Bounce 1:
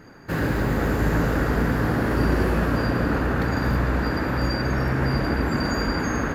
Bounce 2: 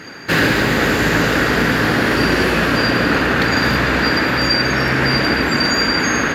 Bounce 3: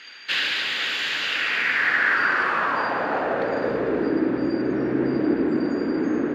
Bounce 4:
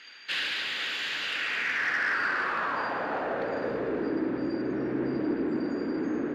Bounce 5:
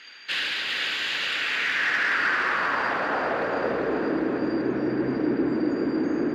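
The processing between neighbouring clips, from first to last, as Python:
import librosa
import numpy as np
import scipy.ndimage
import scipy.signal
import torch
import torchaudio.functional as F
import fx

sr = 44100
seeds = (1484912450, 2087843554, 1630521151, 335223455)

y1 = fx.weighting(x, sr, curve='D')
y1 = fx.rider(y1, sr, range_db=4, speed_s=0.5)
y1 = y1 * librosa.db_to_amplitude(7.5)
y2 = 10.0 ** (-6.0 / 20.0) * np.tanh(y1 / 10.0 ** (-6.0 / 20.0))
y2 = fx.filter_sweep_bandpass(y2, sr, from_hz=3200.0, to_hz=330.0, start_s=1.22, end_s=4.21, q=2.8)
y2 = y2 * librosa.db_to_amplitude(3.0)
y3 = 10.0 ** (-13.5 / 20.0) * np.tanh(y2 / 10.0 ** (-13.5 / 20.0))
y3 = y3 * librosa.db_to_amplitude(-6.0)
y4 = fx.echo_feedback(y3, sr, ms=396, feedback_pct=57, wet_db=-5.5)
y4 = y4 * librosa.db_to_amplitude(3.0)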